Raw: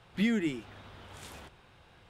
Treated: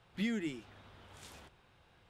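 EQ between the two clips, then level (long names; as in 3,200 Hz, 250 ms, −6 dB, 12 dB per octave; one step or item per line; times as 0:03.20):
dynamic equaliser 5,500 Hz, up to +4 dB, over −56 dBFS, Q 0.91
−7.0 dB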